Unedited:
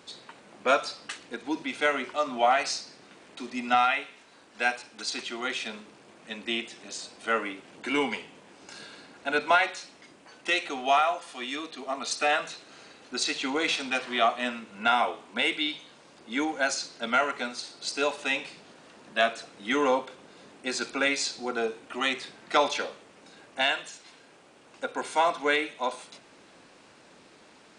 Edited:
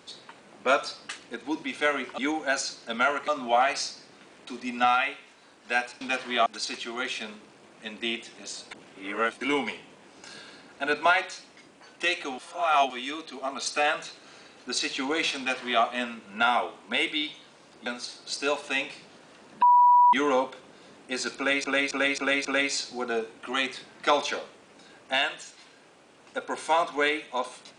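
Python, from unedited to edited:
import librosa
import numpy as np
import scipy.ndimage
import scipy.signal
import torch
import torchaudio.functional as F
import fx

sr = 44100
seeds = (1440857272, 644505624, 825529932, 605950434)

y = fx.edit(x, sr, fx.reverse_span(start_s=7.16, length_s=0.7),
    fx.reverse_span(start_s=10.83, length_s=0.52),
    fx.duplicate(start_s=13.83, length_s=0.45, to_s=4.91),
    fx.move(start_s=16.31, length_s=1.1, to_s=2.18),
    fx.bleep(start_s=19.17, length_s=0.51, hz=977.0, db=-14.0),
    fx.repeat(start_s=20.92, length_s=0.27, count=5), tone=tone)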